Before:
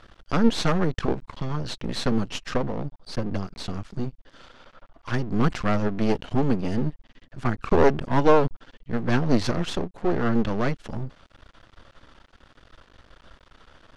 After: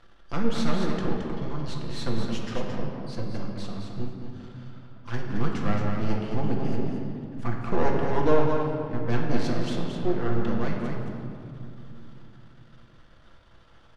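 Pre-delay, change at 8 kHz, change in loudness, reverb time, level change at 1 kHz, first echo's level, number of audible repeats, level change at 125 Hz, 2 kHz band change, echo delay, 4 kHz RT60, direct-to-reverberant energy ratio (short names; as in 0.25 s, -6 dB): 6 ms, n/a, -4.0 dB, 2.9 s, -4.0 dB, -6.5 dB, 1, -2.0 dB, -4.5 dB, 0.22 s, 1.5 s, -2.0 dB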